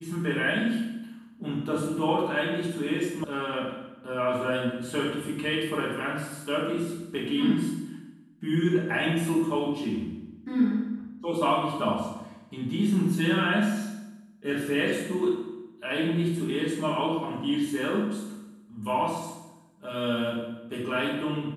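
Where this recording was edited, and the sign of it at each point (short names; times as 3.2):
3.24 sound cut off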